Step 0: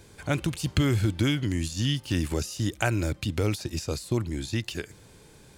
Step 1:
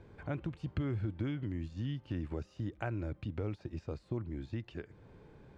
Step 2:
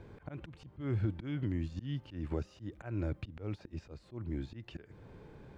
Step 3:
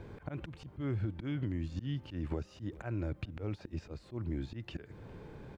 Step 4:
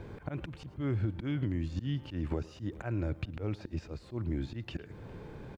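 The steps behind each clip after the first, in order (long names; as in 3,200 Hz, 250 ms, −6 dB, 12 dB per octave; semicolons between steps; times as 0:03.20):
Bessel low-pass filter 1,300 Hz, order 2; downward compressor 1.5 to 1, threshold −45 dBFS, peak gain reduction 9.5 dB; level −2.5 dB
volume swells 169 ms; level +3.5 dB
slap from a distant wall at 70 metres, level −25 dB; downward compressor 3 to 1, threshold −37 dBFS, peak gain reduction 7.5 dB; level +4 dB
single-tap delay 109 ms −20 dB; level +3 dB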